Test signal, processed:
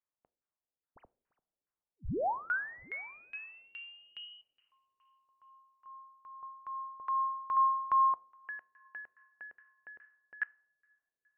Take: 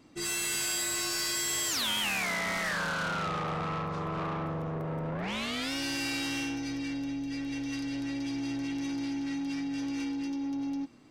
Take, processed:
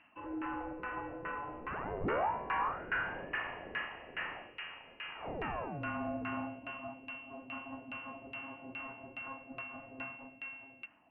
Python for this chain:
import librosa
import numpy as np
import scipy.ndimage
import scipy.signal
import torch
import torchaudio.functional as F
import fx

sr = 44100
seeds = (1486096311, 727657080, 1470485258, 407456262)

y = 10.0 ** (-29.0 / 20.0) * np.tanh(x / 10.0 ** (-29.0 / 20.0))
y = fx.rev_double_slope(y, sr, seeds[0], early_s=0.5, late_s=3.5, knee_db=-18, drr_db=16.5)
y = fx.freq_invert(y, sr, carrier_hz=3000)
y = fx.filter_lfo_lowpass(y, sr, shape='saw_down', hz=2.4, low_hz=430.0, high_hz=1600.0, q=1.7)